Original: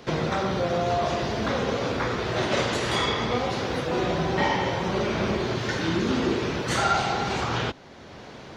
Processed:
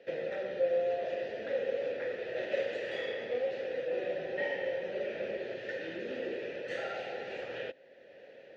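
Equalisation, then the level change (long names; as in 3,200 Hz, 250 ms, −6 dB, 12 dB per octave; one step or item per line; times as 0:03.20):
formant filter e
high-shelf EQ 8,500 Hz −4.5 dB
0.0 dB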